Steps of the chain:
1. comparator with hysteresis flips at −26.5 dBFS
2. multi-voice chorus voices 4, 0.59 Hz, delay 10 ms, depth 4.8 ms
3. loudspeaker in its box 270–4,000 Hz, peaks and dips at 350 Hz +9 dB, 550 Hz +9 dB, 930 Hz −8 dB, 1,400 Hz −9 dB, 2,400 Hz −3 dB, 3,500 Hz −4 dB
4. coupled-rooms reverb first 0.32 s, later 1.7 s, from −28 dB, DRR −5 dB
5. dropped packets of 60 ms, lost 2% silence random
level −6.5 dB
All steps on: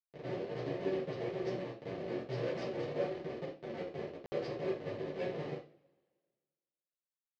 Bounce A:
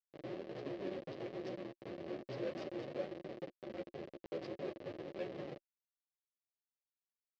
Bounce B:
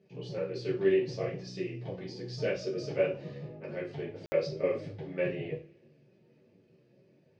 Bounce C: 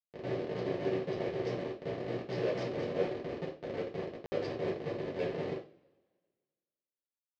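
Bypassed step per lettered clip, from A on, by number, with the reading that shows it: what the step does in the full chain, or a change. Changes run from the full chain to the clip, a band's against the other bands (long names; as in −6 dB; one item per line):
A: 4, 125 Hz band −2.5 dB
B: 1, change in crest factor +3.5 dB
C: 2, change in integrated loudness +3.0 LU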